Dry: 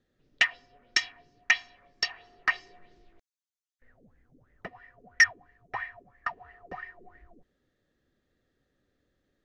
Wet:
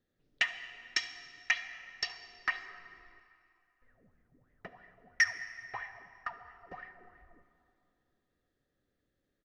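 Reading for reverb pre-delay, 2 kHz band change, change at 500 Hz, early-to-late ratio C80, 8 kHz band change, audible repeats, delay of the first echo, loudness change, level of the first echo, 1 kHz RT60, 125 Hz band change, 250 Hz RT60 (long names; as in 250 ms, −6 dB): 3 ms, −6.5 dB, −6.0 dB, 11.5 dB, −6.0 dB, 1, 71 ms, −7.0 dB, −20.0 dB, 2.6 s, can't be measured, 2.7 s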